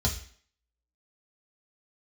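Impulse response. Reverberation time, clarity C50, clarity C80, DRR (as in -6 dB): 0.50 s, 10.0 dB, 13.5 dB, -0.5 dB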